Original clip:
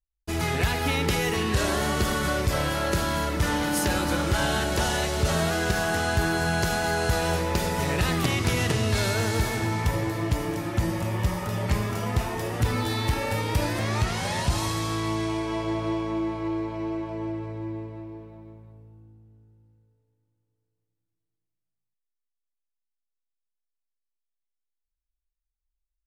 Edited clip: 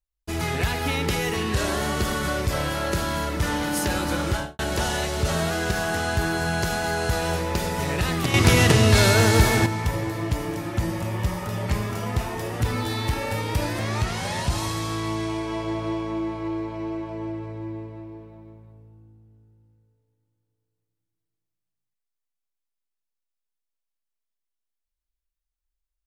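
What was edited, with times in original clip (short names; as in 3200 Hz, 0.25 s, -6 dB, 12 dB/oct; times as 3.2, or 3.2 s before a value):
4.3–4.59 studio fade out
8.34–9.66 gain +8 dB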